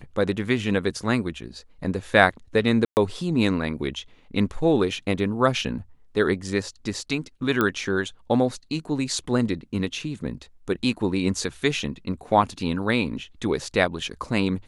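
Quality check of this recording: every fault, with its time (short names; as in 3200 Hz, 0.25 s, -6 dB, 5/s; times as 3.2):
2.85–2.97 gap 0.119 s
7.61 pop -9 dBFS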